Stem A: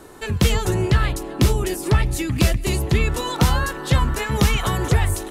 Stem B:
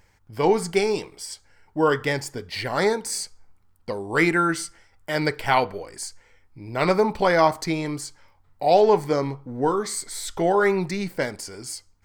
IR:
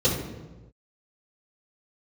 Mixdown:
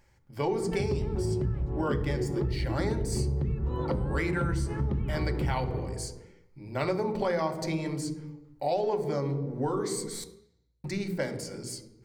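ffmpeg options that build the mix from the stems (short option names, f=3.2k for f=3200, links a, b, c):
-filter_complex "[0:a]lowshelf=f=480:g=11,acompressor=threshold=-17dB:ratio=6,lowpass=1.6k,adelay=500,volume=-8dB,asplit=2[a][b];[b]volume=-21.5dB[c];[1:a]volume=-6dB,asplit=3[d][e][f];[d]atrim=end=10.24,asetpts=PTS-STARTPTS,afade=t=out:st=10.236:d=0.004:c=hsin[g];[e]atrim=start=10.24:end=10.84,asetpts=PTS-STARTPTS,volume=0[h];[f]atrim=start=10.84,asetpts=PTS-STARTPTS,afade=t=in:d=0.004:c=hsin[i];[g][h][i]concat=n=3:v=0:a=1,asplit=2[j][k];[k]volume=-20dB[l];[2:a]atrim=start_sample=2205[m];[c][l]amix=inputs=2:normalize=0[n];[n][m]afir=irnorm=-1:irlink=0[o];[a][j][o]amix=inputs=3:normalize=0,acompressor=threshold=-26dB:ratio=4"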